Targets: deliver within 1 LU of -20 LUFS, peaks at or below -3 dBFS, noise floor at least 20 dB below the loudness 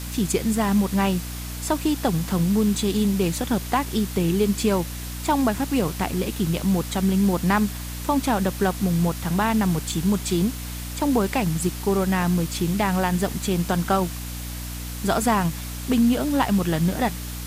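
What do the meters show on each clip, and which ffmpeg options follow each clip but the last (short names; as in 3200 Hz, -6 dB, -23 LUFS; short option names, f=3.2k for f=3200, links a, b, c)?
hum 60 Hz; harmonics up to 300 Hz; hum level -31 dBFS; noise floor -32 dBFS; noise floor target -43 dBFS; loudness -23.0 LUFS; peak -8.0 dBFS; loudness target -20.0 LUFS
-> -af "bandreject=f=60:t=h:w=4,bandreject=f=120:t=h:w=4,bandreject=f=180:t=h:w=4,bandreject=f=240:t=h:w=4,bandreject=f=300:t=h:w=4"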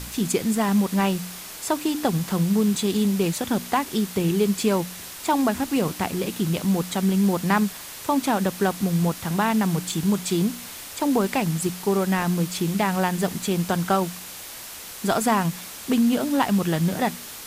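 hum none; noise floor -38 dBFS; noise floor target -44 dBFS
-> -af "afftdn=nr=6:nf=-38"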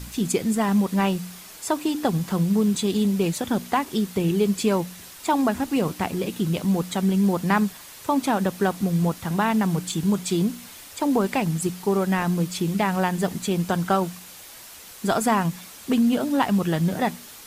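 noise floor -43 dBFS; noise floor target -44 dBFS
-> -af "afftdn=nr=6:nf=-43"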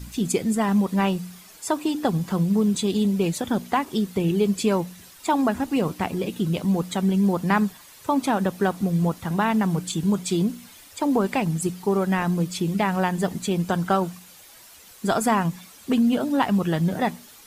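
noise floor -48 dBFS; loudness -23.5 LUFS; peak -8.0 dBFS; loudness target -20.0 LUFS
-> -af "volume=3.5dB"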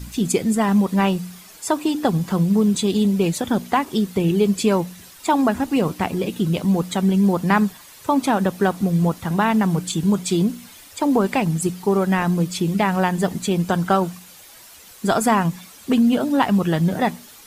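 loudness -20.0 LUFS; peak -4.5 dBFS; noise floor -45 dBFS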